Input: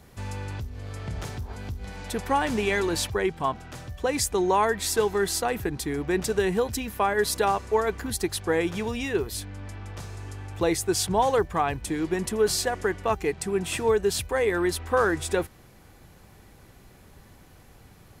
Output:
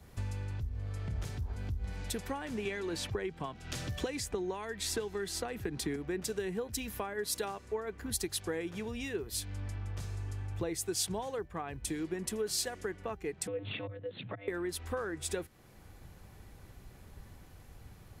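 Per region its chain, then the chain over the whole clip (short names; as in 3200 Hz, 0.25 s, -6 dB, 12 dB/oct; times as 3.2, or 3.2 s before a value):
2.65–5.96 high shelf 8600 Hz -9 dB + three-band squash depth 100%
13.47–14.48 auto swell 0.6 s + monotone LPC vocoder at 8 kHz 200 Hz + frequency shift +98 Hz
whole clip: compressor 4:1, threshold -41 dBFS; dynamic EQ 900 Hz, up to -6 dB, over -54 dBFS, Q 1.2; three-band expander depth 70%; gain +5 dB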